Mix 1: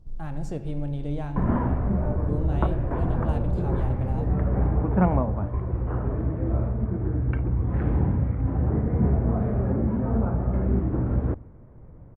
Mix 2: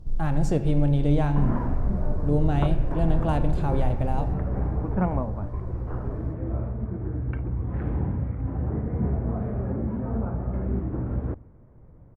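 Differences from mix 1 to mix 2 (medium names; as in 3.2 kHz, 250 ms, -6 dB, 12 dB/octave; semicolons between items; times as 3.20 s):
speech +8.5 dB; background -4.0 dB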